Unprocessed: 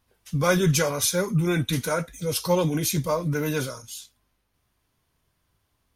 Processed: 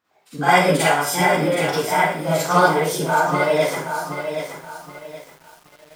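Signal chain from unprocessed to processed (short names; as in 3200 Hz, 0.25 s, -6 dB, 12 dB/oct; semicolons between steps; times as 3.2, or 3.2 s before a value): HPF 550 Hz 12 dB/oct; tilt -4 dB/oct; formant shift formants +6 st; Schroeder reverb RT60 0.46 s, DRR -9 dB; lo-fi delay 0.774 s, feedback 35%, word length 7-bit, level -7.5 dB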